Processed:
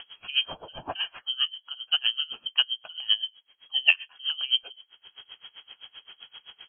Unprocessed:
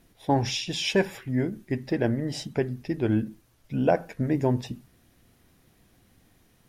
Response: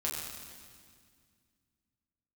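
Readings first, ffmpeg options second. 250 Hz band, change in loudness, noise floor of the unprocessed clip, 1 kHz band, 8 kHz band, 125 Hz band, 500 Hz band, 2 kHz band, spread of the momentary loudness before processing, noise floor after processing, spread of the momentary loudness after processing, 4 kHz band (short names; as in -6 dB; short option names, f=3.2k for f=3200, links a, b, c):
under -25 dB, +1.0 dB, -63 dBFS, -10.0 dB, under -40 dB, under -25 dB, -21.0 dB, +6.0 dB, 7 LU, -68 dBFS, 23 LU, +12.0 dB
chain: -af "acompressor=mode=upward:threshold=-32dB:ratio=2.5,lowpass=f=2.8k:t=q:w=0.5098,lowpass=f=2.8k:t=q:w=0.6013,lowpass=f=2.8k:t=q:w=0.9,lowpass=f=2.8k:t=q:w=2.563,afreqshift=-3300,aeval=exprs='val(0)*pow(10,-25*(0.5-0.5*cos(2*PI*7.7*n/s))/20)':c=same,volume=4dB"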